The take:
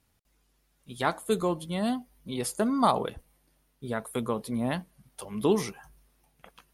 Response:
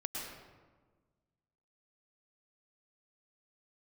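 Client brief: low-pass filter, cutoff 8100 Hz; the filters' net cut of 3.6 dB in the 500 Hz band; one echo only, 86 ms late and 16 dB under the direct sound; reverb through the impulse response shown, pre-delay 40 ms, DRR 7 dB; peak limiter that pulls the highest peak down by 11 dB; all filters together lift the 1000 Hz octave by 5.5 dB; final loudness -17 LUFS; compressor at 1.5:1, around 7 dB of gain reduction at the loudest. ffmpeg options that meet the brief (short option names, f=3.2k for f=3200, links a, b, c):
-filter_complex "[0:a]lowpass=8.1k,equalizer=f=500:t=o:g=-7.5,equalizer=f=1k:t=o:g=9,acompressor=threshold=-33dB:ratio=1.5,alimiter=level_in=0.5dB:limit=-24dB:level=0:latency=1,volume=-0.5dB,aecho=1:1:86:0.158,asplit=2[a][b];[1:a]atrim=start_sample=2205,adelay=40[c];[b][c]afir=irnorm=-1:irlink=0,volume=-8.5dB[d];[a][d]amix=inputs=2:normalize=0,volume=18.5dB"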